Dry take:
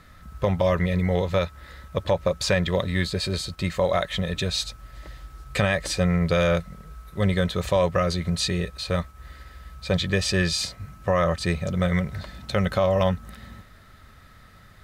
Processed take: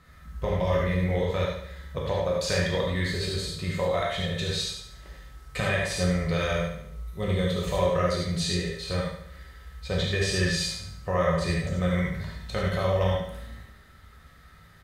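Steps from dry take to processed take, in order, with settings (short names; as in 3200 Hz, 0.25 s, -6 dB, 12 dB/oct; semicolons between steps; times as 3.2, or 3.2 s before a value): 6.67–7.67 bell 1600 Hz -10.5 dB 0.23 oct; on a send: feedback echo 72 ms, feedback 49%, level -8 dB; on the sum: non-linear reverb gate 0.13 s flat, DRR -3 dB; gain -8 dB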